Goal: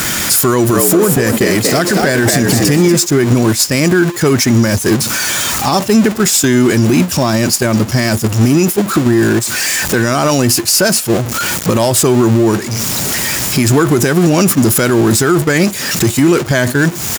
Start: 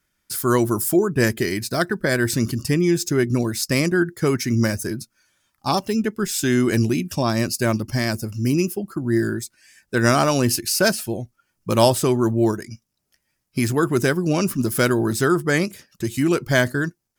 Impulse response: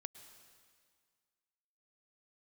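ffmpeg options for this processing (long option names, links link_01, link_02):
-filter_complex "[0:a]aeval=exprs='val(0)+0.5*0.0631*sgn(val(0))':channel_layout=same,asplit=3[link_01][link_02][link_03];[link_01]afade=type=out:start_time=0.72:duration=0.02[link_04];[link_02]asplit=5[link_05][link_06][link_07][link_08][link_09];[link_06]adelay=236,afreqshift=73,volume=-6dB[link_10];[link_07]adelay=472,afreqshift=146,volume=-14.9dB[link_11];[link_08]adelay=708,afreqshift=219,volume=-23.7dB[link_12];[link_09]adelay=944,afreqshift=292,volume=-32.6dB[link_13];[link_05][link_10][link_11][link_12][link_13]amix=inputs=5:normalize=0,afade=type=in:start_time=0.72:duration=0.02,afade=type=out:start_time=2.95:duration=0.02[link_14];[link_03]afade=type=in:start_time=2.95:duration=0.02[link_15];[link_04][link_14][link_15]amix=inputs=3:normalize=0,asoftclip=type=hard:threshold=-5.5dB,highpass=82,agate=range=-12dB:threshold=-21dB:ratio=16:detection=peak,equalizer=frequency=6700:width=6.1:gain=10.5,acompressor=threshold=-30dB:ratio=8,bandreject=frequency=6500:width=11,alimiter=level_in=26.5dB:limit=-1dB:release=50:level=0:latency=1,volume=-1dB"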